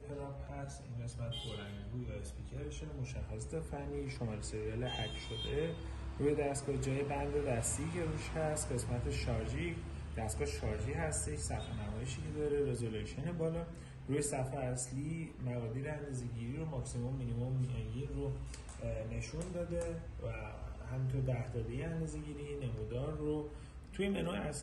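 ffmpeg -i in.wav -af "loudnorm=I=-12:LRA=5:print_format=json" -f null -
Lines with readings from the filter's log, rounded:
"input_i" : "-40.0",
"input_tp" : "-21.8",
"input_lra" : "4.9",
"input_thresh" : "-50.0",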